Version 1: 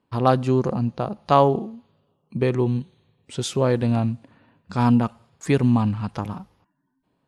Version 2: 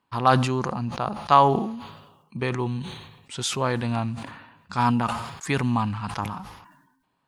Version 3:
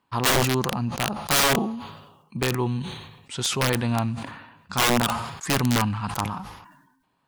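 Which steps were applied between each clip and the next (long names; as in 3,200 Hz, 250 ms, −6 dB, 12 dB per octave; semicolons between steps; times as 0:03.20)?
low shelf with overshoot 710 Hz −7.5 dB, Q 1.5; level that may fall only so fast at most 57 dB per second; level +1.5 dB
wrap-around overflow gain 16 dB; level +2 dB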